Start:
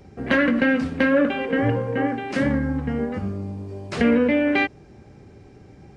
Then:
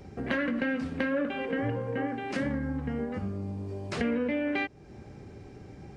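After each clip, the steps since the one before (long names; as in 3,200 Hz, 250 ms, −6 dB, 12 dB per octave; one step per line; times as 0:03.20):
downward compressor 2 to 1, threshold −35 dBFS, peak gain reduction 11.5 dB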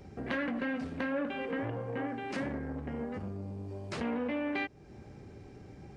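saturating transformer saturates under 780 Hz
level −3 dB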